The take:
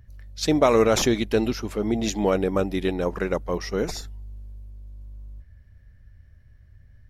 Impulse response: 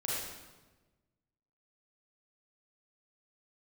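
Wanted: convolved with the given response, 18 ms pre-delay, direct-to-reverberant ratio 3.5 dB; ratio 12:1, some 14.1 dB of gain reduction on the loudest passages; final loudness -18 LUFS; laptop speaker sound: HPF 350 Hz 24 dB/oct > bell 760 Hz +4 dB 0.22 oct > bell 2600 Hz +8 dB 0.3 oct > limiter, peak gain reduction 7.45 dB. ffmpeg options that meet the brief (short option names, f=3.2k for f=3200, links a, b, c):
-filter_complex "[0:a]acompressor=threshold=-28dB:ratio=12,asplit=2[a][b];[1:a]atrim=start_sample=2205,adelay=18[c];[b][c]afir=irnorm=-1:irlink=0,volume=-8dB[d];[a][d]amix=inputs=2:normalize=0,highpass=f=350:w=0.5412,highpass=f=350:w=1.3066,equalizer=f=760:t=o:w=0.22:g=4,equalizer=f=2.6k:t=o:w=0.3:g=8,volume=17.5dB,alimiter=limit=-7.5dB:level=0:latency=1"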